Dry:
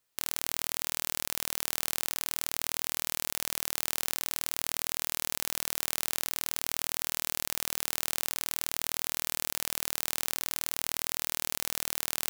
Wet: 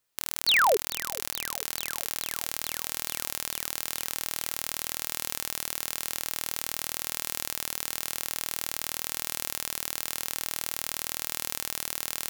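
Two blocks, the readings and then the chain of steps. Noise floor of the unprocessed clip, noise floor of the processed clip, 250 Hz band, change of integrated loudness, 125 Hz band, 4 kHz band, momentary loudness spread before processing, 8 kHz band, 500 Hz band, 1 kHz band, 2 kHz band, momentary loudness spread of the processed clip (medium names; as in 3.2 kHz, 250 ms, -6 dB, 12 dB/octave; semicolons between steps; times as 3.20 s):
-78 dBFS, -51 dBFS, +0.5 dB, +1.5 dB, 0.0 dB, +3.0 dB, 0 LU, 0.0 dB, +9.5 dB, +7.5 dB, +5.5 dB, 3 LU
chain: painted sound fall, 0.47–0.77 s, 370–4800 Hz -21 dBFS; thinning echo 434 ms, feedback 78%, high-pass 640 Hz, level -19 dB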